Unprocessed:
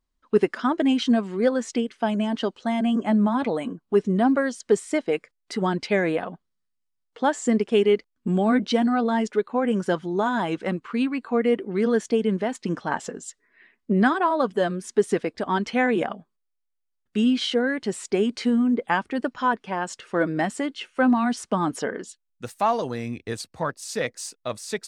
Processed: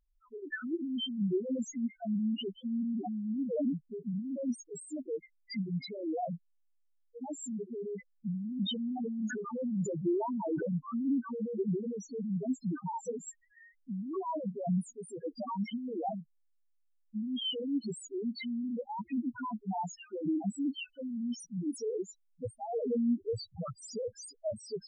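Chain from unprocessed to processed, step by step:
compressor whose output falls as the input rises −29 dBFS, ratio −1
spectral peaks only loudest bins 1
0:08.61–0:10.63: level that may fall only so fast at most 44 dB per second
level +2.5 dB

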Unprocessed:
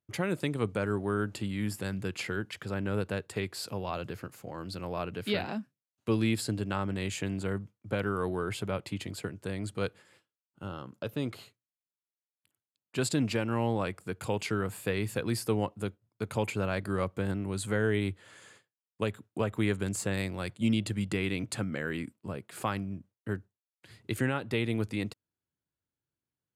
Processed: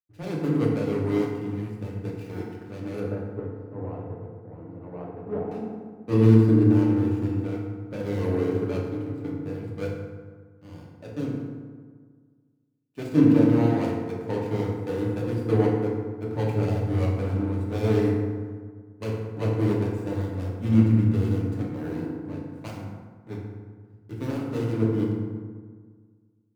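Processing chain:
running median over 41 samples
0:03.00–0:05.51: low-pass filter 1,300 Hz 12 dB per octave
feedback delay network reverb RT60 2.6 s, low-frequency decay 1.25×, high-frequency decay 0.45×, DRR −4 dB
multiband upward and downward expander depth 70%

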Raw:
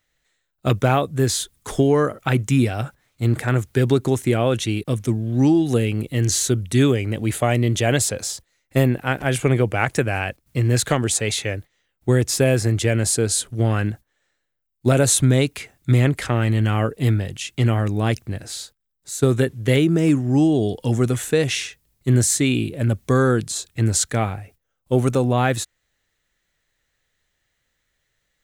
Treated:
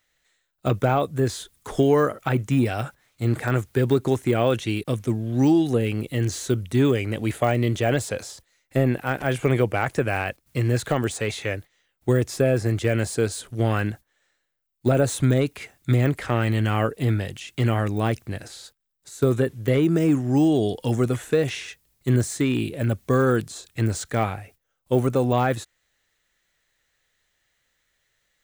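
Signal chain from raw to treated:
de-essing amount 95%
low-shelf EQ 350 Hz −6.5 dB
level +2 dB

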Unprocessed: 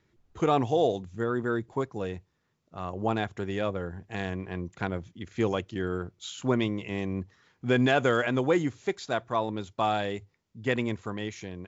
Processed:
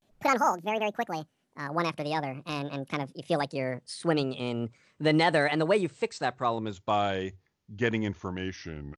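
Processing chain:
gliding playback speed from 182% → 78%
pitch vibrato 0.39 Hz 82 cents

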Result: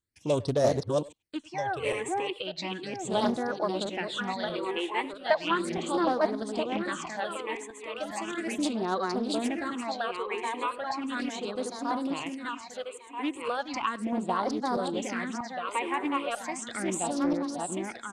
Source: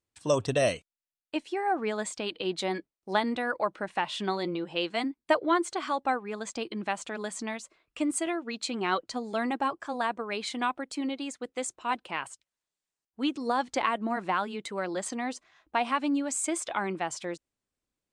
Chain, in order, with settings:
feedback delay that plays each chunk backwards 642 ms, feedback 56%, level −1.5 dB
all-pass phaser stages 8, 0.36 Hz, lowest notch 180–2,700 Hz
far-end echo of a speakerphone 100 ms, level −20 dB
highs frequency-modulated by the lows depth 0.28 ms

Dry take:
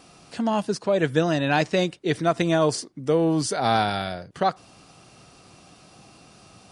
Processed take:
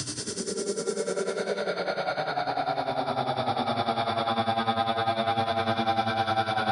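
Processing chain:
extreme stretch with random phases 21×, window 0.10 s, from 0:03.47
mains-hum notches 60/120 Hz
amplitude tremolo 10 Hz, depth 80%
on a send at −12 dB: convolution reverb RT60 2.6 s, pre-delay 39 ms
on the sum: multiband upward and downward compressor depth 70%
level −3 dB

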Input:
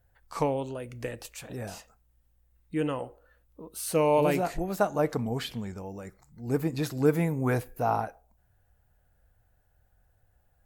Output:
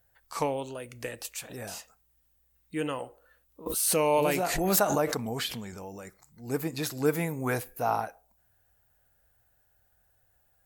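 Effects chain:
spectral tilt +2 dB per octave
0:03.66–0:06.07: background raised ahead of every attack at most 28 dB per second

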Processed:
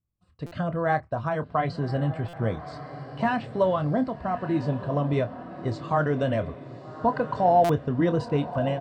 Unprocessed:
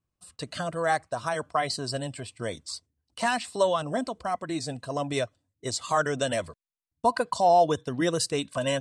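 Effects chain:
bass and treble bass +8 dB, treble −7 dB
automatic gain control gain up to 11 dB
head-to-tape spacing loss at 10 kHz 30 dB
double-tracking delay 27 ms −11 dB
feedback delay with all-pass diffusion 1,211 ms, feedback 41%, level −12 dB
buffer that repeats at 0:00.46/0:02.28/0:07.64, samples 256, times 8
level −7 dB

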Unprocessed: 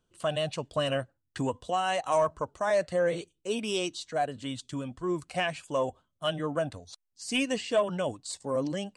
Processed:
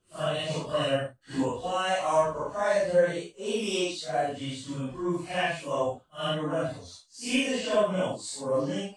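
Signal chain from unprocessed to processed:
random phases in long frames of 200 ms
level +2 dB

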